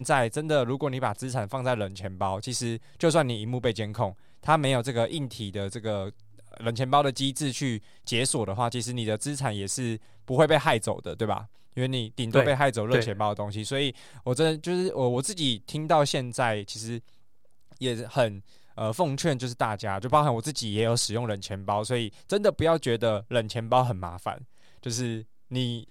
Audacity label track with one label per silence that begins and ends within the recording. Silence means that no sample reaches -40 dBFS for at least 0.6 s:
17.000000	17.720000	silence